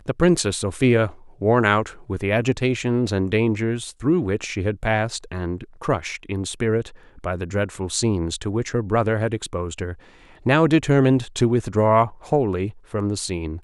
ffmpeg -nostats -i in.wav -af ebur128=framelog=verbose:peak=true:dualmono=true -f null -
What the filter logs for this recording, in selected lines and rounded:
Integrated loudness:
  I:         -18.9 LUFS
  Threshold: -29.1 LUFS
Loudness range:
  LRA:         5.3 LU
  Threshold: -39.4 LUFS
  LRA low:   -22.4 LUFS
  LRA high:  -17.1 LUFS
True peak:
  Peak:       -3.0 dBFS